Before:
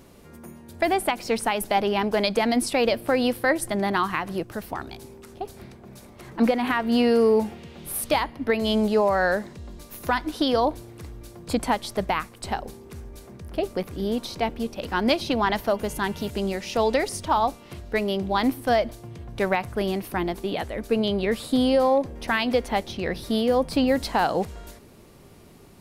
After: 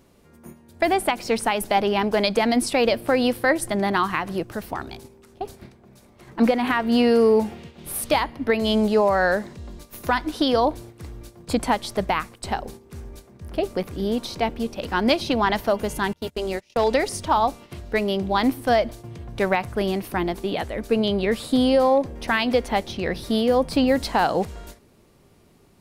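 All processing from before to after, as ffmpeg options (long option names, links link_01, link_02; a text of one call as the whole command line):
ffmpeg -i in.wav -filter_complex "[0:a]asettb=1/sr,asplit=3[link_01][link_02][link_03];[link_01]atrim=end=16.134[link_04];[link_02]atrim=start=16.13:end=16.91,asetpts=PTS-STARTPTS,afade=type=in:duration=0.004:curve=qsin,afade=type=out:start_time=0.776:duration=0.004:curve=qsin,bandreject=frequency=200:width=5.7,agate=range=-28dB:threshold=-32dB:ratio=16:release=100:detection=peak,asoftclip=type=hard:threshold=-14dB[link_05];[link_03]atrim=start=16.906[link_06];[link_04][link_05]acrossfade=duration=0.004:curve1=hsin:curve2=qsin[link_07];[link_07][link_06]acrossfade=duration=0.004:curve1=qsin:curve2=hsin,agate=range=-8dB:threshold=-41dB:ratio=16:detection=peak,equalizer=frequency=12000:width_type=o:width=0.31:gain=-3,volume=2dB" out.wav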